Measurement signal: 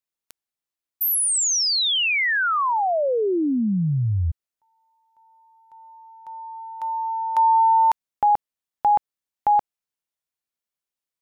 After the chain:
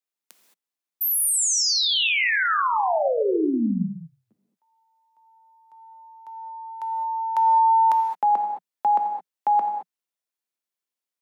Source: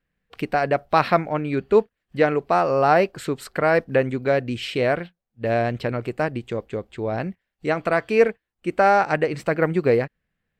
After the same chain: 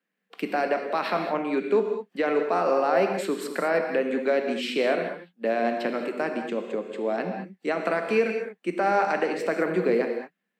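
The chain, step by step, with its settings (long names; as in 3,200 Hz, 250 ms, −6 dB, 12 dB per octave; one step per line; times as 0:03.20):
Butterworth high-pass 180 Hz 72 dB per octave
brickwall limiter −13 dBFS
reverb whose tail is shaped and stops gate 240 ms flat, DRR 4 dB
level −2 dB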